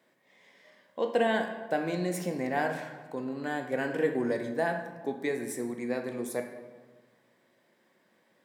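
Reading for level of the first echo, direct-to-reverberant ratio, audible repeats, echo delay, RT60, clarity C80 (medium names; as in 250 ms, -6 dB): no echo, 4.0 dB, no echo, no echo, 1.4 s, 9.0 dB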